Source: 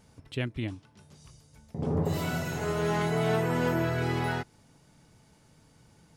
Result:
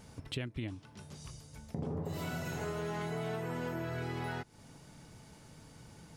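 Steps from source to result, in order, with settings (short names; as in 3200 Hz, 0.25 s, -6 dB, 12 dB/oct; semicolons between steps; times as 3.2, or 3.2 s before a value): compressor 6:1, threshold -41 dBFS, peak gain reduction 17 dB; gain +5 dB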